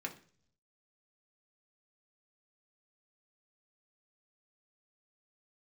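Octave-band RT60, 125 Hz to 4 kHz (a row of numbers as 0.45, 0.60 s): 1.0, 0.70, 0.55, 0.40, 0.45, 0.60 s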